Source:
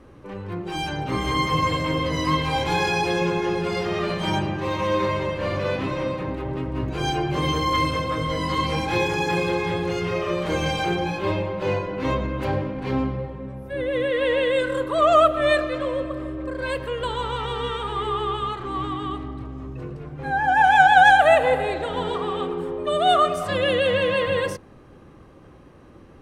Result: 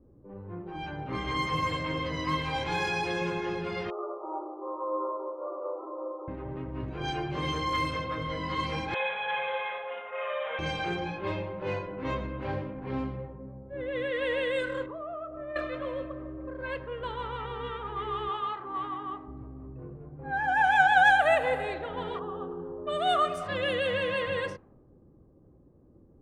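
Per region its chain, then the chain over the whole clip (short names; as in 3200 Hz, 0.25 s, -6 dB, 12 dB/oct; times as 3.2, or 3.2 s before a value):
3.9–6.28 brick-wall FIR band-pass 300–1400 Hz + notches 50/100/150/200/250/300/350/400 Hz
8.94–10.59 steep high-pass 470 Hz 72 dB/oct + flutter echo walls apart 10 m, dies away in 0.65 s + careless resampling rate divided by 6×, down none, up filtered
14.86–15.56 compressor 4:1, threshold -25 dBFS + tape spacing loss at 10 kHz 38 dB + doubler 25 ms -9.5 dB
18.29–19.28 HPF 330 Hz 6 dB/oct + bell 910 Hz +5.5 dB 0.76 oct + notch 2300 Hz, Q 16
22.19–22.87 Butterworth band-stop 2200 Hz, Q 1.7 + air absorption 400 m
whole clip: low-pass opened by the level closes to 400 Hz, open at -17.5 dBFS; dynamic EQ 1800 Hz, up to +4 dB, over -33 dBFS, Q 1; gain -9 dB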